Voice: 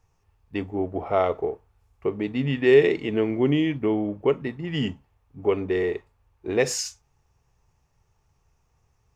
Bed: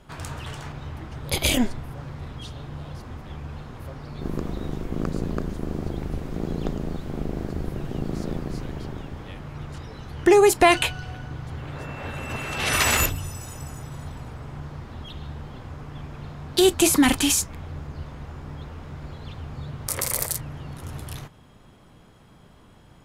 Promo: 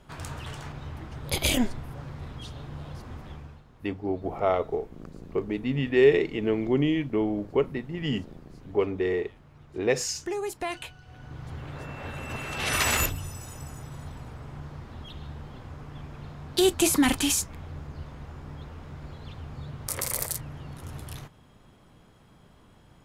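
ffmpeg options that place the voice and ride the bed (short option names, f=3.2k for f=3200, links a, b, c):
-filter_complex "[0:a]adelay=3300,volume=-2.5dB[a];[1:a]volume=9.5dB,afade=t=out:st=3.24:d=0.38:silence=0.211349,afade=t=in:st=11.05:d=0.44:silence=0.237137[b];[a][b]amix=inputs=2:normalize=0"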